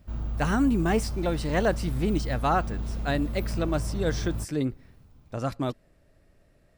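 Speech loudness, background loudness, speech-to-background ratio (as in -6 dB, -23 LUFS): -28.5 LUFS, -34.0 LUFS, 5.5 dB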